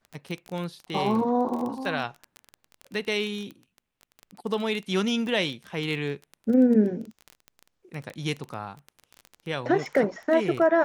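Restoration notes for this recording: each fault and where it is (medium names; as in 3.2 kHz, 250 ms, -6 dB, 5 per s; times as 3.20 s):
crackle 19 per s -30 dBFS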